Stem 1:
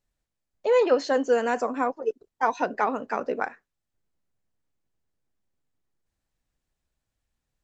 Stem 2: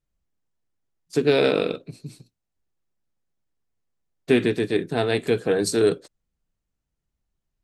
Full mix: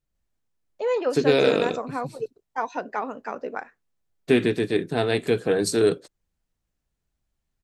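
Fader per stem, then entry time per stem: -4.0, -0.5 dB; 0.15, 0.00 s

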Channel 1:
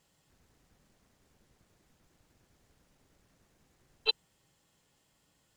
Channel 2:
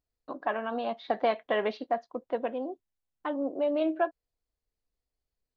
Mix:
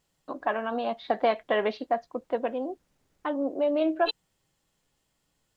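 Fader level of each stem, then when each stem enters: -3.5, +2.5 dB; 0.00, 0.00 s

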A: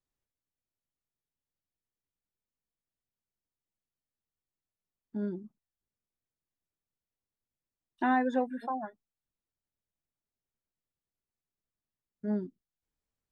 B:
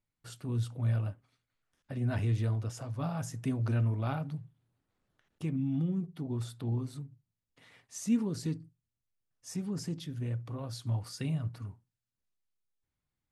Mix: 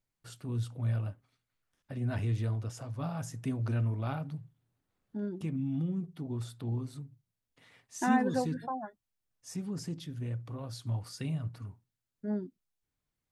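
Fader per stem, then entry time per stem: -2.0, -1.5 dB; 0.00, 0.00 s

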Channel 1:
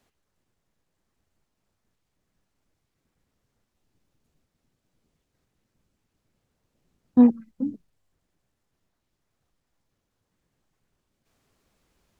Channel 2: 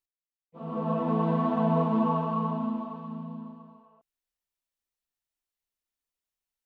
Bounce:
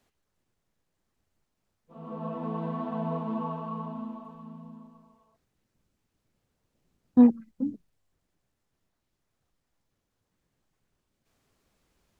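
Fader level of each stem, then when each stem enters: -2.0, -7.0 dB; 0.00, 1.35 s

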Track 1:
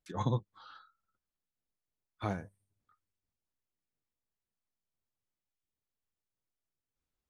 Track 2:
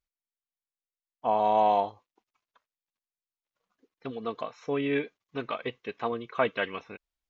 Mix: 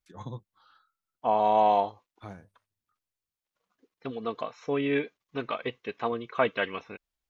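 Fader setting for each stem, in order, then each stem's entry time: -8.0, +1.0 dB; 0.00, 0.00 s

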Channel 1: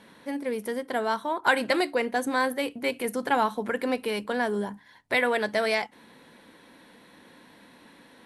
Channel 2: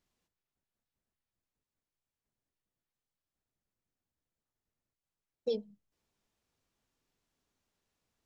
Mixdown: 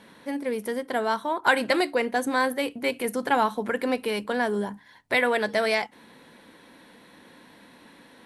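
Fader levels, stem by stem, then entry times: +1.5, -16.5 dB; 0.00, 0.00 s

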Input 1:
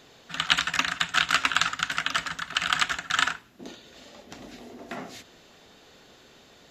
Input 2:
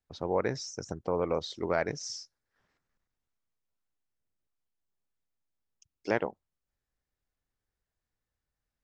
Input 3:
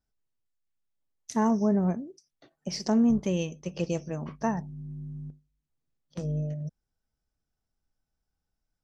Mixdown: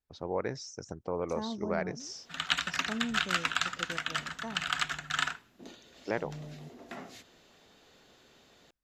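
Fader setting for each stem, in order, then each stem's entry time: -7.0, -4.0, -13.5 dB; 2.00, 0.00, 0.00 s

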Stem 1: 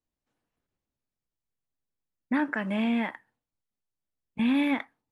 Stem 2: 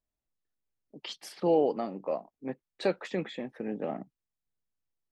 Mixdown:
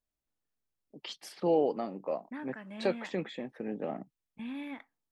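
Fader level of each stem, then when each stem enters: -15.5, -2.0 dB; 0.00, 0.00 s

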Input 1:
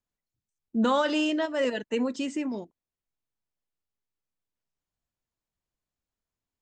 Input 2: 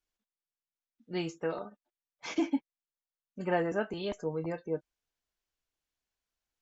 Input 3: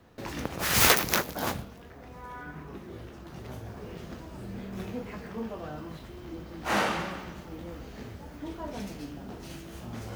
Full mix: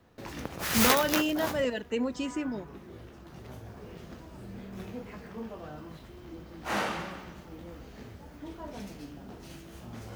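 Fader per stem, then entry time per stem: -2.5 dB, off, -4.0 dB; 0.00 s, off, 0.00 s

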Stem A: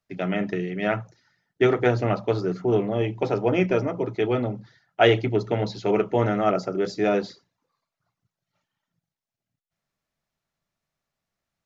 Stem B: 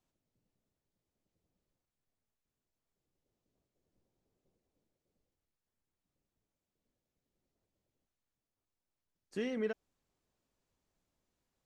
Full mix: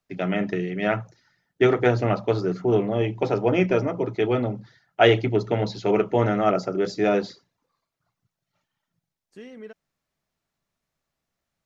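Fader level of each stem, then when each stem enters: +1.0, -5.5 dB; 0.00, 0.00 s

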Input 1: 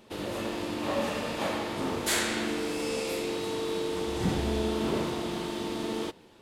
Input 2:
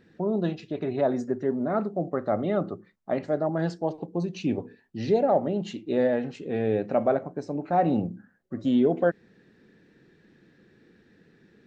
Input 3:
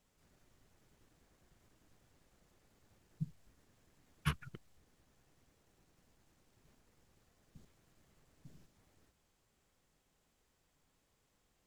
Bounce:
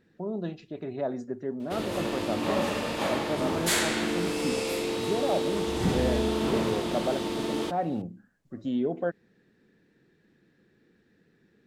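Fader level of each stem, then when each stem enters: +2.0, -6.5, -10.5 dB; 1.60, 0.00, 0.00 s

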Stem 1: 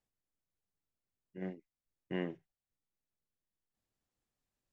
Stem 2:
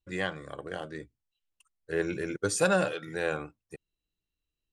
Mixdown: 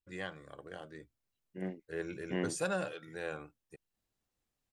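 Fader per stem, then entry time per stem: +2.0, -9.5 dB; 0.20, 0.00 s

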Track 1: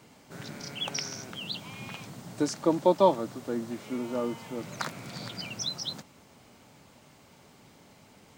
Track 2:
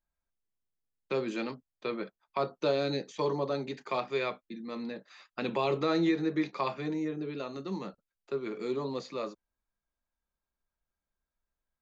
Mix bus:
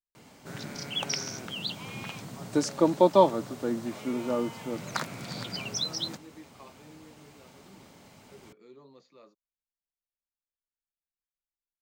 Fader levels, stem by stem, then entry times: +2.0, -19.5 dB; 0.15, 0.00 s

